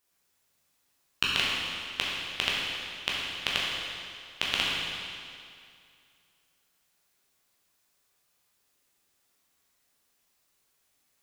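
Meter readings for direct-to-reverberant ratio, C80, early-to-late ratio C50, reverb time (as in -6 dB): -6.0 dB, 0.0 dB, -1.5 dB, 2.3 s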